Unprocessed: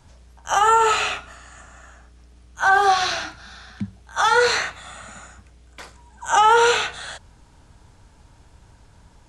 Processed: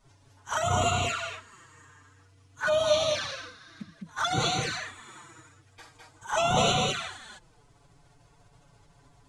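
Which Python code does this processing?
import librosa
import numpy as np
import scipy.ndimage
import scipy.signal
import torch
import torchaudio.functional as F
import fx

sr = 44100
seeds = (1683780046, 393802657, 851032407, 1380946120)

y = fx.pitch_keep_formants(x, sr, semitones=8.0)
y = fx.echo_multitap(y, sr, ms=(68, 208), db=(-12.5, -3.0))
y = fx.env_flanger(y, sr, rest_ms=7.7, full_db=-13.5)
y = F.gain(torch.from_numpy(y), -6.0).numpy()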